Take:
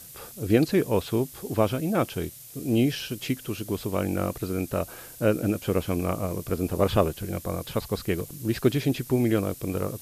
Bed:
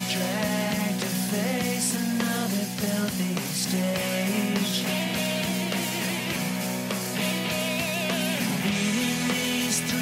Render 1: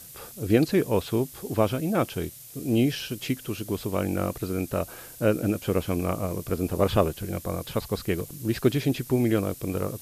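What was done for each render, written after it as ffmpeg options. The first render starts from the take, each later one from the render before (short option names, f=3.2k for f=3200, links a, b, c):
-af anull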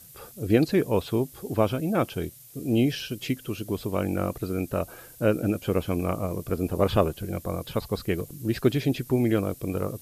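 -af "afftdn=nr=6:nf=-45"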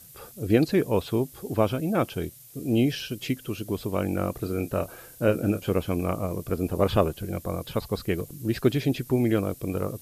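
-filter_complex "[0:a]asettb=1/sr,asplit=3[a][b][c];[a]atrim=end=4.334[d];[b]atrim=start=4.33:end=5.72,asetpts=PTS-STARTPTS,afade=t=in:d=0.004:c=qsin,afade=t=out:st=1.386:d=0.004:c=qsin,asplit=2[e][f];[f]adelay=30,volume=-10.5dB[g];[e][g]amix=inputs=2:normalize=0,atrim=end_sample=61299[h];[c]atrim=start=5.716[i];[d][h]acrossfade=d=0.004:c1=hsin:c2=qsin[j];[j][i]acrossfade=d=0.004:c1=qsin:c2=hsin"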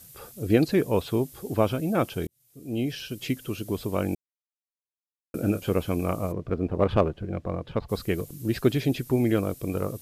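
-filter_complex "[0:a]asplit=3[a][b][c];[a]afade=t=out:st=6.31:d=0.02[d];[b]adynamicsmooth=sensitivity=1.5:basefreq=2.1k,afade=t=in:st=6.31:d=0.02,afade=t=out:st=7.88:d=0.02[e];[c]afade=t=in:st=7.88:d=0.02[f];[d][e][f]amix=inputs=3:normalize=0,asplit=4[g][h][i][j];[g]atrim=end=2.27,asetpts=PTS-STARTPTS,afade=t=out:st=2.266:d=0.004:c=hsin[k];[h]atrim=start=2.27:end=4.15,asetpts=PTS-STARTPTS,afade=t=in:d=1.06,afade=t=out:st=1.876:d=0.004:c=hsin[l];[i]atrim=start=4.15:end=5.34,asetpts=PTS-STARTPTS,volume=0[m];[j]atrim=start=5.34,asetpts=PTS-STARTPTS,afade=t=in:d=0.004:c=hsin[n];[k][l][m][n]concat=n=4:v=0:a=1"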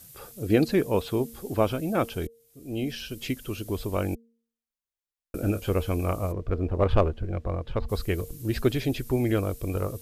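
-af "bandreject=f=230.4:t=h:w=4,bandreject=f=460.8:t=h:w=4,asubboost=boost=8.5:cutoff=54"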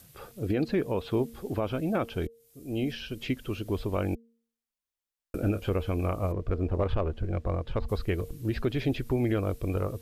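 -filter_complex "[0:a]acrossover=split=4100[a][b];[b]acompressor=threshold=-56dB:ratio=10[c];[a][c]amix=inputs=2:normalize=0,alimiter=limit=-18dB:level=0:latency=1:release=152"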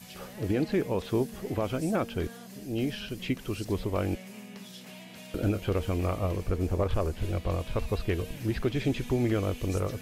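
-filter_complex "[1:a]volume=-19.5dB[a];[0:a][a]amix=inputs=2:normalize=0"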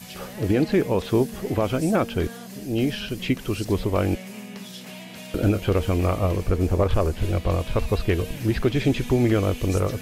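-af "volume=7dB"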